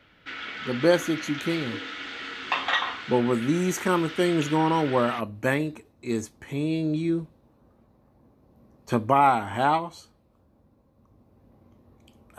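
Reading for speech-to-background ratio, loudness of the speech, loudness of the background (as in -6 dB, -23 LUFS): 7.0 dB, -25.5 LUFS, -32.5 LUFS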